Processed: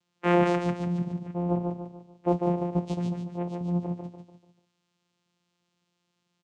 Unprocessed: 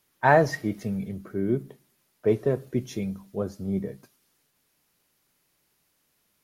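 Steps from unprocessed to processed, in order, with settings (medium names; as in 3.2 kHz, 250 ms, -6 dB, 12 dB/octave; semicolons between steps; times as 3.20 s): treble shelf 2.9 kHz +10 dB; feedback delay 146 ms, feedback 42%, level -4 dB; vocoder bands 4, saw 175 Hz; trim -2.5 dB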